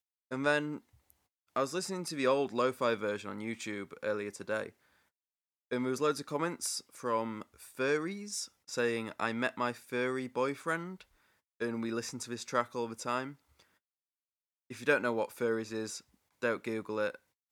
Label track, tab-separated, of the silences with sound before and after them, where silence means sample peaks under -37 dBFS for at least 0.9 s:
4.660000	5.710000	silence
13.290000	14.710000	silence